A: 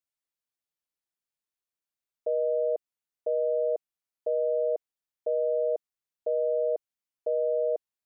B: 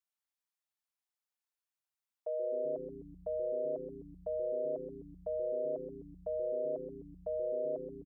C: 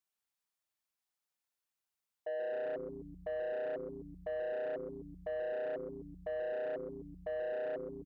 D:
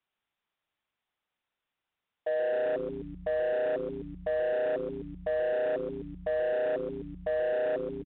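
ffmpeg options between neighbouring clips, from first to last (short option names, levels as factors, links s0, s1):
-filter_complex "[0:a]lowshelf=f=590:t=q:w=1.5:g=-9.5,asplit=8[s0][s1][s2][s3][s4][s5][s6][s7];[s1]adelay=128,afreqshift=-110,volume=0.355[s8];[s2]adelay=256,afreqshift=-220,volume=0.214[s9];[s3]adelay=384,afreqshift=-330,volume=0.127[s10];[s4]adelay=512,afreqshift=-440,volume=0.0767[s11];[s5]adelay=640,afreqshift=-550,volume=0.0462[s12];[s6]adelay=768,afreqshift=-660,volume=0.0275[s13];[s7]adelay=896,afreqshift=-770,volume=0.0166[s14];[s0][s8][s9][s10][s11][s12][s13][s14]amix=inputs=8:normalize=0,volume=0.668"
-af "asoftclip=type=tanh:threshold=0.0168,volume=1.26"
-filter_complex "[0:a]acrossover=split=180|1500[s0][s1][s2];[s1]acrusher=bits=5:mode=log:mix=0:aa=0.000001[s3];[s0][s3][s2]amix=inputs=3:normalize=0,aresample=8000,aresample=44100,volume=2.66"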